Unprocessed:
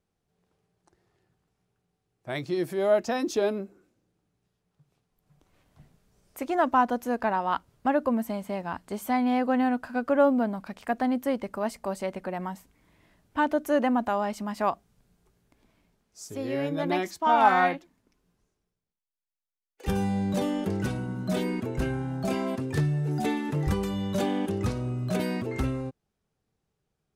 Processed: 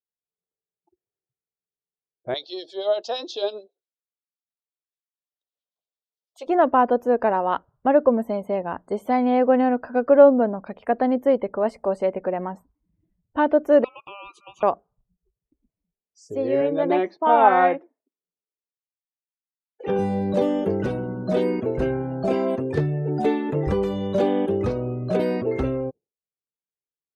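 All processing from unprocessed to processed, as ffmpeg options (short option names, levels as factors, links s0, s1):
-filter_complex "[0:a]asettb=1/sr,asplit=3[s0][s1][s2];[s0]atrim=end=2.344[s3];[s1]atrim=start=2.34:end=6.47,asetpts=PTS-STARTPTS,afade=t=in:d=0.004:c=qsin,afade=t=out:st=4.126:d=0.004:c=qsin,highpass=690,lowpass=5700,highshelf=f=2700:t=q:w=3:g=10,acrossover=split=2000[s4][s5];[s4]aeval=exprs='val(0)*(1-0.7/2+0.7/2*cos(2*PI*9*n/s))':c=same[s6];[s5]aeval=exprs='val(0)*(1-0.7/2-0.7/2*cos(2*PI*9*n/s))':c=same[s7];[s6][s7]amix=inputs=2:normalize=0[s8];[s2]atrim=start=6.466[s9];[s3][s8]acrossfade=d=0.004:c1=hsin:c2=qsin[s10];[s10][s9]acrossfade=d=0.004:c1=qsin:c2=hsin,asettb=1/sr,asplit=3[s11][s12][s13];[s11]atrim=end=13.844[s14];[s12]atrim=start=13.84:end=14.63,asetpts=PTS-STARTPTS,afade=t=in:d=0.004:c=qsin,afade=t=out:st=0.786:d=0.004:c=qsin,aeval=exprs='val(0)*sin(2*PI*1800*n/s)':c=same,acompressor=threshold=0.0158:ratio=10:attack=3.2:release=140:knee=1:detection=peak,asuperstop=centerf=1800:order=12:qfactor=1.8[s15];[s13]atrim=start=14.626[s16];[s14][s15]acrossfade=d=0.004:c1=hsin:c2=qsin[s17];[s17][s16]acrossfade=d=0.004:c1=qsin:c2=hsin,asettb=1/sr,asplit=3[s18][s19][s20];[s18]atrim=end=16.614[s21];[s19]atrim=start=16.61:end=19.99,asetpts=PTS-STARTPTS,afade=t=in:d=0.004:c=qsin,afade=t=out:st=3.376:d=0.004:c=qsin,acrossover=split=3900[s22][s23];[s23]acompressor=threshold=0.00158:ratio=4:attack=1:release=60[s24];[s22][s24]amix=inputs=2:normalize=0,highpass=190,lowpass=6900[s25];[s20]atrim=start=19.986[s26];[s21][s25]acrossfade=d=0.004:c1=hsin:c2=qsin[s27];[s27][s26]acrossfade=d=0.004:c1=qsin:c2=hsin,afftdn=nr=34:nf=-50,acrossover=split=4800[s28][s29];[s29]acompressor=threshold=0.00141:ratio=4:attack=1:release=60[s30];[s28][s30]amix=inputs=2:normalize=0,equalizer=f=480:t=o:w=1.2:g=12"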